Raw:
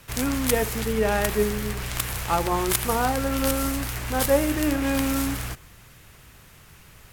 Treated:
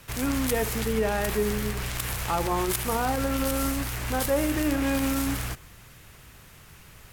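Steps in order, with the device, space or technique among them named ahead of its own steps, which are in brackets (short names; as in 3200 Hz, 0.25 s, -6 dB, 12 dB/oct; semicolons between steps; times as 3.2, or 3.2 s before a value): soft clipper into limiter (soft clip -11.5 dBFS, distortion -23 dB; limiter -17 dBFS, peak gain reduction 5 dB)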